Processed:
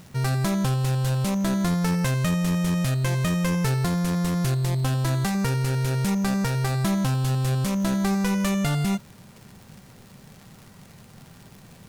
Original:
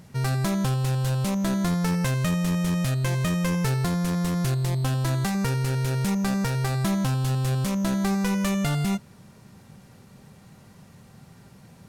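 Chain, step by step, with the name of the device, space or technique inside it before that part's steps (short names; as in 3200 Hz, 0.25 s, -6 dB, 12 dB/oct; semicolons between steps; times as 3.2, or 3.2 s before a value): vinyl LP (crackle 140/s -38 dBFS; pink noise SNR 33 dB); gain +1 dB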